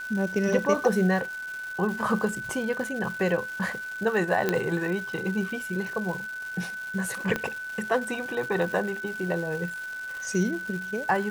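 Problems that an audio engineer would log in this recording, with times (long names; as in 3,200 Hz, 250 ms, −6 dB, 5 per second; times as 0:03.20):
surface crackle 520 per second −35 dBFS
whistle 1,500 Hz −33 dBFS
0:04.49: click −10 dBFS
0:07.36: click −13 dBFS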